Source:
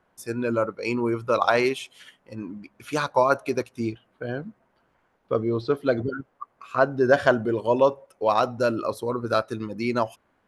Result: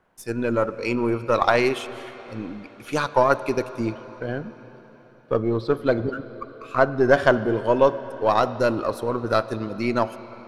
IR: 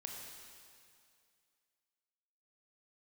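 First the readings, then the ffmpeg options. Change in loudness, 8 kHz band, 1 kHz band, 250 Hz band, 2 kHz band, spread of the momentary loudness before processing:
+2.0 dB, n/a, +2.0 dB, +2.0 dB, +2.0 dB, 16 LU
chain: -filter_complex "[0:a]aeval=exprs='if(lt(val(0),0),0.708*val(0),val(0))':c=same,asplit=2[a][b];[b]lowpass=4.9k[c];[1:a]atrim=start_sample=2205,asetrate=23373,aresample=44100[d];[c][d]afir=irnorm=-1:irlink=0,volume=-12.5dB[e];[a][e]amix=inputs=2:normalize=0,volume=1.5dB"

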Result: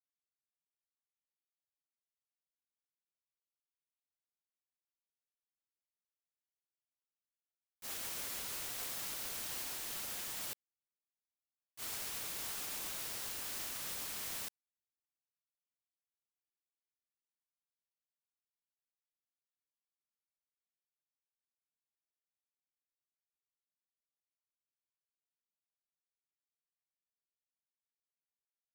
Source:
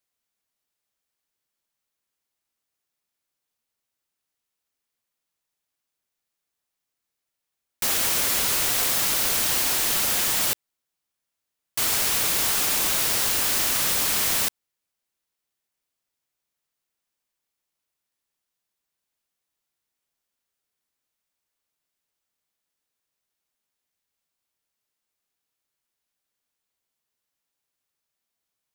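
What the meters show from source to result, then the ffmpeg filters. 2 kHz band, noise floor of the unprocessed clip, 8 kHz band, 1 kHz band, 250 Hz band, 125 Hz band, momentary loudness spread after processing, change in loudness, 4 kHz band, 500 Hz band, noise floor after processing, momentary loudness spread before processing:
-19.5 dB, -84 dBFS, -19.5 dB, -19.5 dB, -19.5 dB, -19.5 dB, 5 LU, -19.5 dB, -19.5 dB, -19.5 dB, under -85 dBFS, 4 LU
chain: -af "agate=range=-33dB:threshold=-9dB:ratio=3:detection=peak,volume=1.5dB"

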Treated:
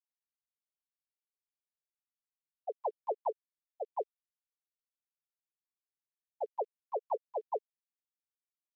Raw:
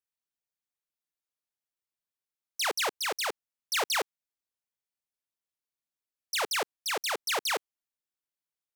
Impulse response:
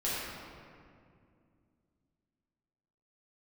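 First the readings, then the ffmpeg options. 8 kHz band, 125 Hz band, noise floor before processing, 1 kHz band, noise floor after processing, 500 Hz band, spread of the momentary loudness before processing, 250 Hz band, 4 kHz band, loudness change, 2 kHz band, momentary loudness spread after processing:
under -40 dB, n/a, under -85 dBFS, -4.5 dB, under -85 dBFS, -1.0 dB, 6 LU, under -10 dB, under -40 dB, -9.5 dB, under -40 dB, 8 LU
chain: -filter_complex "[0:a]equalizer=f=4.4k:w=5.7:g=-6,acompressor=threshold=-30dB:ratio=12,alimiter=level_in=4dB:limit=-24dB:level=0:latency=1:release=378,volume=-4dB,asplit=2[a][b];[b]adelay=16,volume=-4dB[c];[a][c]amix=inputs=2:normalize=0,asplit=2[d][e];[1:a]atrim=start_sample=2205,lowpass=f=1.4k:w=0.5412,lowpass=f=1.4k:w=1.3066[f];[e][f]afir=irnorm=-1:irlink=0,volume=-24.5dB[g];[d][g]amix=inputs=2:normalize=0,afftfilt=real='re*gte(hypot(re,im),0.1)':imag='im*gte(hypot(re,im),0.1)':win_size=1024:overlap=0.75,lowshelf=f=420:g=-11,aexciter=amount=8.2:drive=7.5:freq=2k,volume=11dB"

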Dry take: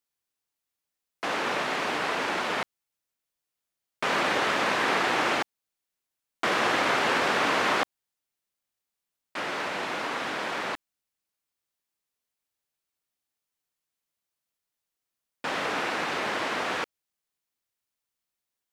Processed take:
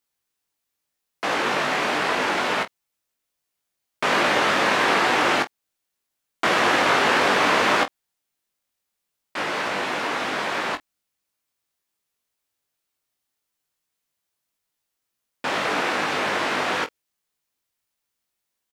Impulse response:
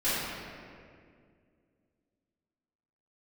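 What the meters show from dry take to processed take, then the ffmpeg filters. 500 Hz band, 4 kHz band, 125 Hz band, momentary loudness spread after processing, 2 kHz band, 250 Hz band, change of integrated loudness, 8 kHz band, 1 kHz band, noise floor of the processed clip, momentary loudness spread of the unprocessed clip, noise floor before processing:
+5.5 dB, +5.5 dB, +5.5 dB, 10 LU, +5.5 dB, +5.5 dB, +5.5 dB, +5.5 dB, +5.5 dB, -81 dBFS, 10 LU, under -85 dBFS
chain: -af "aecho=1:1:20|47:0.501|0.15,volume=4.5dB"

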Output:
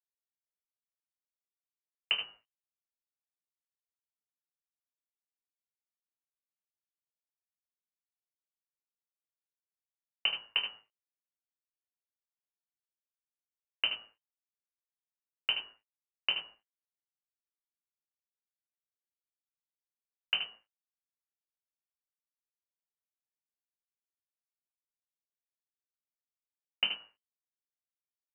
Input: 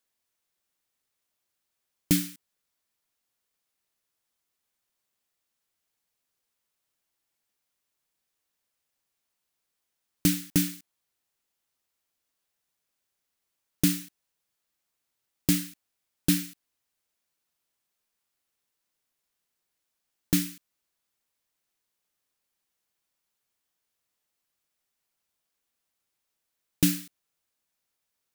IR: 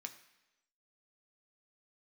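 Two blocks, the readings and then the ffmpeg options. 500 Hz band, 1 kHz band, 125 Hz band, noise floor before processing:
-11.0 dB, +3.5 dB, under -35 dB, -82 dBFS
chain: -filter_complex "[0:a]agate=range=-33dB:threshold=-47dB:ratio=3:detection=peak,equalizer=f=61:t=o:w=1.6:g=15,asplit=2[a][b];[b]acompressor=threshold=-30dB:ratio=6,volume=-2dB[c];[a][c]amix=inputs=2:normalize=0,aeval=exprs='0.708*(cos(1*acos(clip(val(0)/0.708,-1,1)))-cos(1*PI/2))+0.0355*(cos(4*acos(clip(val(0)/0.708,-1,1)))-cos(4*PI/2))+0.0158*(cos(6*acos(clip(val(0)/0.708,-1,1)))-cos(6*PI/2))+0.158*(cos(7*acos(clip(val(0)/0.708,-1,1)))-cos(7*PI/2))':c=same,aeval=exprs='sgn(val(0))*max(abs(val(0))-0.00422,0)':c=same,lowpass=f=2.6k:t=q:w=0.5098,lowpass=f=2.6k:t=q:w=0.6013,lowpass=f=2.6k:t=q:w=0.9,lowpass=f=2.6k:t=q:w=2.563,afreqshift=-3100,asplit=2[d][e];[e]adelay=19,volume=-5.5dB[f];[d][f]amix=inputs=2:normalize=0,asplit=2[g][h];[h]aecho=0:1:24|75:0.398|0.398[i];[g][i]amix=inputs=2:normalize=0,acrossover=split=190|1500[j][k][l];[j]acompressor=threshold=-59dB:ratio=4[m];[k]acompressor=threshold=-40dB:ratio=4[n];[l]acompressor=threshold=-25dB:ratio=4[o];[m][n][o]amix=inputs=3:normalize=0,volume=-4dB"

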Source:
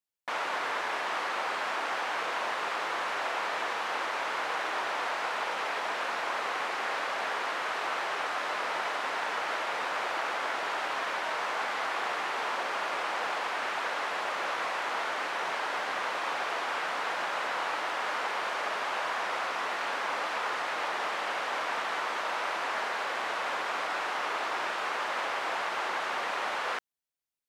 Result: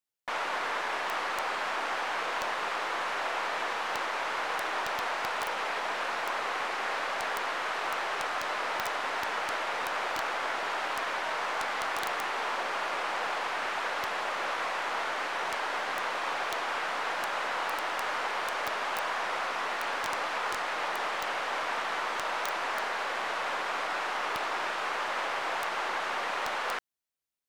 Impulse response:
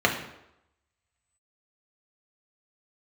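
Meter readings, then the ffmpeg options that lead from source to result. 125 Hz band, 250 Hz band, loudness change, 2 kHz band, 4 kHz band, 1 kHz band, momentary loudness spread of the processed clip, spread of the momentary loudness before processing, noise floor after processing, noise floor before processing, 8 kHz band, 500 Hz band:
n/a, 0.0 dB, 0.0 dB, 0.0 dB, 0.0 dB, 0.0 dB, 0 LU, 0 LU, -34 dBFS, -34 dBFS, +1.5 dB, 0.0 dB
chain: -af "aeval=exprs='(mod(11.2*val(0)+1,2)-1)/11.2':c=same,aeval=exprs='0.0944*(cos(1*acos(clip(val(0)/0.0944,-1,1)))-cos(1*PI/2))+0.00168*(cos(8*acos(clip(val(0)/0.0944,-1,1)))-cos(8*PI/2))':c=same"

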